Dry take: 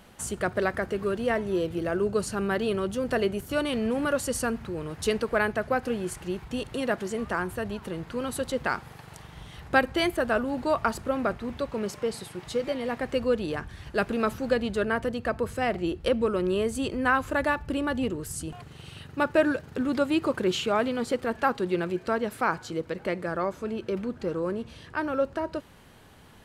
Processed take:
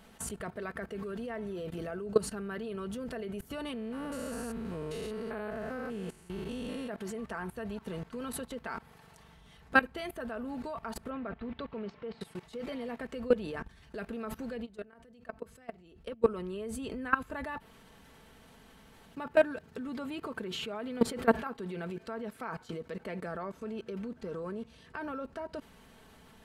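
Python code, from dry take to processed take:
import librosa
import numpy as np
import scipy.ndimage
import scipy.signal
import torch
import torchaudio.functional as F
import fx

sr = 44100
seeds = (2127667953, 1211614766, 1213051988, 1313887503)

y = fx.spec_steps(x, sr, hold_ms=200, at=(3.73, 6.89))
y = fx.lowpass(y, sr, hz=3700.0, slope=24, at=(11.1, 12.21))
y = fx.level_steps(y, sr, step_db=24, at=(14.64, 16.22), fade=0.02)
y = fx.env_flatten(y, sr, amount_pct=70, at=(20.83, 21.49))
y = fx.edit(y, sr, fx.room_tone_fill(start_s=17.6, length_s=1.55), tone=tone)
y = fx.dynamic_eq(y, sr, hz=6400.0, q=1.0, threshold_db=-50.0, ratio=4.0, max_db=-6)
y = y + 0.52 * np.pad(y, (int(4.5 * sr / 1000.0), 0))[:len(y)]
y = fx.level_steps(y, sr, step_db=19)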